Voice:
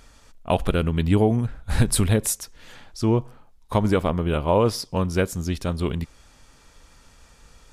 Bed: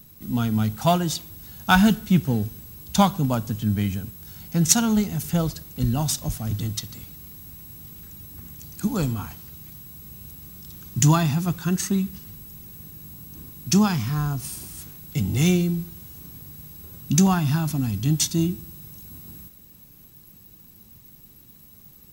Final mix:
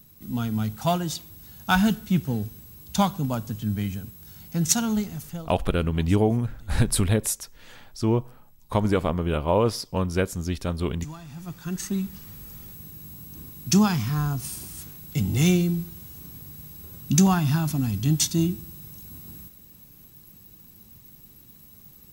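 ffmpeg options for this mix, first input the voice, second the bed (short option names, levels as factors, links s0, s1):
-filter_complex "[0:a]adelay=5000,volume=0.794[s0];[1:a]volume=7.5,afade=t=out:st=4.94:d=0.59:silence=0.125893,afade=t=in:st=11.26:d=1.16:silence=0.0841395[s1];[s0][s1]amix=inputs=2:normalize=0"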